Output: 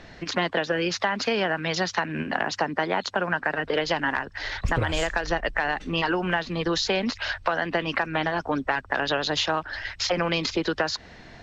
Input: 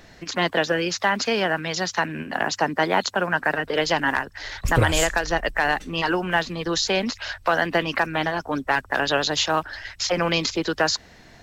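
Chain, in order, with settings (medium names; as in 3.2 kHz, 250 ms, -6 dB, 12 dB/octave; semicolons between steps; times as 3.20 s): low-pass 4.6 kHz 12 dB/octave; compression, threshold -24 dBFS, peak gain reduction 10.5 dB; trim +3 dB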